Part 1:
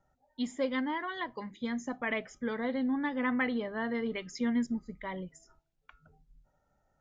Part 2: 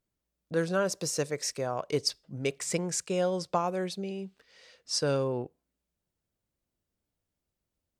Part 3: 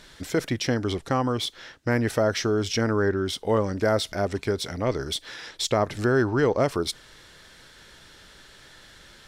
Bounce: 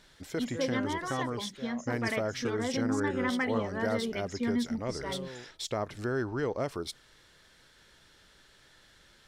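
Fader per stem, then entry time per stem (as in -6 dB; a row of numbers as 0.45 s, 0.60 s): -0.5 dB, -14.0 dB, -10.0 dB; 0.00 s, 0.00 s, 0.00 s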